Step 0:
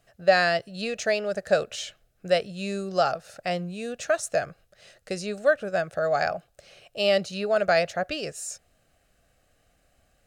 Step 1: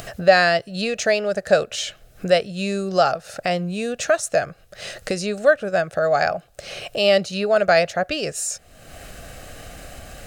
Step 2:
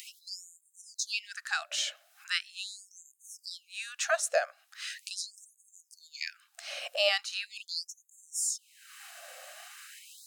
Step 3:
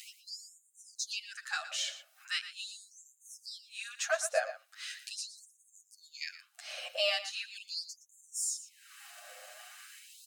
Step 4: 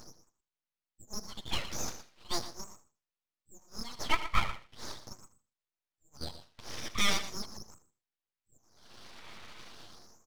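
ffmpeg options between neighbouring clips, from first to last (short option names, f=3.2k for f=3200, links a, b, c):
-af "acompressor=mode=upward:threshold=-25dB:ratio=2.5,volume=5.5dB"
-af "asubboost=boost=6:cutoff=220,afftfilt=real='re*gte(b*sr/1024,500*pow(6400/500,0.5+0.5*sin(2*PI*0.4*pts/sr)))':imag='im*gte(b*sr/1024,500*pow(6400/500,0.5+0.5*sin(2*PI*0.4*pts/sr)))':win_size=1024:overlap=0.75,volume=-4.5dB"
-filter_complex "[0:a]acrossover=split=1500|1900|7600[a][b][c][d];[b]asoftclip=type=hard:threshold=-37.5dB[e];[a][e][c][d]amix=inputs=4:normalize=0,asplit=2[f][g];[g]adelay=116.6,volume=-12dB,highshelf=f=4k:g=-2.62[h];[f][h]amix=inputs=2:normalize=0,asplit=2[i][j];[j]adelay=8.3,afreqshift=0.36[k];[i][k]amix=inputs=2:normalize=1"
-af "aresample=8000,aresample=44100,aecho=1:1:79|158|237:0.158|0.0428|0.0116,aeval=exprs='abs(val(0))':c=same,volume=5.5dB"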